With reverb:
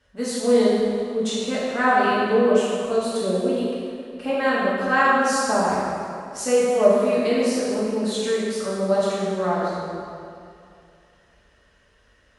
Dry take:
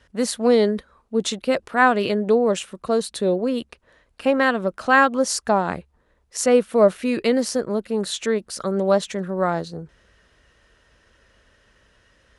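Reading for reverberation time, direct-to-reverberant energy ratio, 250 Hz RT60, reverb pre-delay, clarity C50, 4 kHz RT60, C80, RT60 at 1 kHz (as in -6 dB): 2.4 s, -8.5 dB, 2.3 s, 3 ms, -2.5 dB, 1.9 s, -1.0 dB, 2.5 s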